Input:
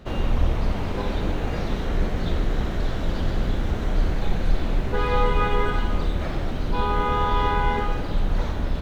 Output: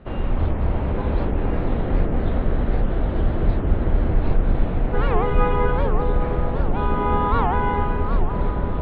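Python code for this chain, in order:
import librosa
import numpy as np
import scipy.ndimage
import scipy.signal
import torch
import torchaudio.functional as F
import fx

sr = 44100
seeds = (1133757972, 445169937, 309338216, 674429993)

y = scipy.signal.sosfilt(scipy.signal.bessel(6, 2100.0, 'lowpass', norm='mag', fs=sr, output='sos'), x)
y = fx.echo_wet_lowpass(y, sr, ms=225, feedback_pct=81, hz=1000.0, wet_db=-3)
y = fx.record_warp(y, sr, rpm=78.0, depth_cents=250.0)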